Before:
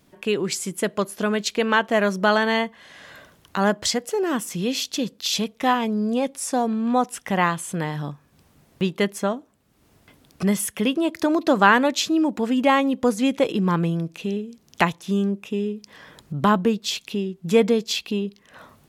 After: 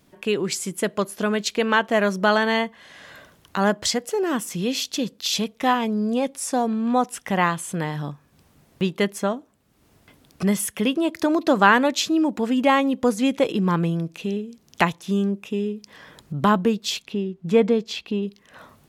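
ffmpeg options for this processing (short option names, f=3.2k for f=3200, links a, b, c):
-filter_complex "[0:a]asettb=1/sr,asplit=3[a][b][c];[a]atrim=end=17.024[d];[b]atrim=start=17.02:end=18.23,asetpts=PTS-STARTPTS,afade=t=in:d=0.004:c=qsin,afade=t=out:st=1.206:d=0.004:c=qsin,lowpass=f=2.2k:p=1[e];[c]atrim=start=18.226[f];[d][e]acrossfade=d=0.004:c1=hsin:c2=qsin[g];[g][f]acrossfade=d=0.004:c1=qsin:c2=hsin"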